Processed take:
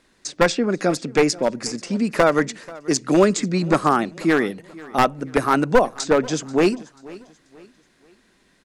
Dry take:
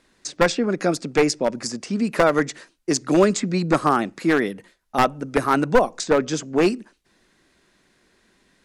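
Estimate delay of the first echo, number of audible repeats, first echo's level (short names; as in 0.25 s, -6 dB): 0.486 s, 2, -21.0 dB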